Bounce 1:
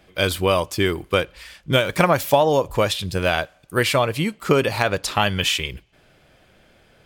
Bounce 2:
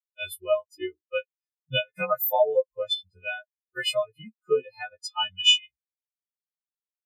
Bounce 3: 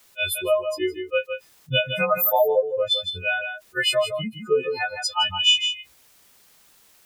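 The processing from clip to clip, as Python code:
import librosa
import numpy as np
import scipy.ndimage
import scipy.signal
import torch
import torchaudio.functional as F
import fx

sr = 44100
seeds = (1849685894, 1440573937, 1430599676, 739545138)

y1 = fx.freq_snap(x, sr, grid_st=3)
y1 = fx.spectral_expand(y1, sr, expansion=4.0)
y1 = y1 * 10.0 ** (-5.5 / 20.0)
y2 = y1 + 10.0 ** (-15.0 / 20.0) * np.pad(y1, (int(161 * sr / 1000.0), 0))[:len(y1)]
y2 = fx.env_flatten(y2, sr, amount_pct=50)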